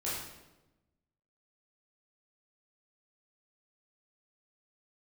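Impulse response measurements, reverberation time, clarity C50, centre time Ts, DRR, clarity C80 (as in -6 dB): 1.0 s, 0.5 dB, 69 ms, -9.0 dB, 3.5 dB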